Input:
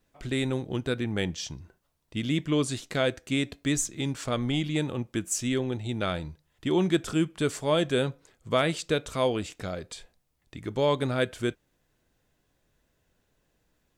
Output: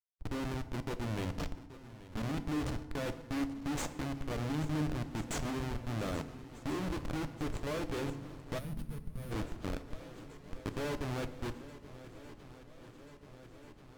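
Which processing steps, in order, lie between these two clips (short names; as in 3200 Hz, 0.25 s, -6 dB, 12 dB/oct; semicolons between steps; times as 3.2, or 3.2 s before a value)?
Schmitt trigger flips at -28.5 dBFS; high shelf 8100 Hz -9.5 dB; de-hum 82.62 Hz, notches 12; level quantiser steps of 18 dB; on a send: swung echo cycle 1.386 s, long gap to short 1.5:1, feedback 68%, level -17 dB; on the sum: FDN reverb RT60 1 s, low-frequency decay 1.4×, high-frequency decay 0.7×, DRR 11 dB; spectral gain 8.59–9.32, 240–8600 Hz -14 dB; Vorbis 96 kbps 48000 Hz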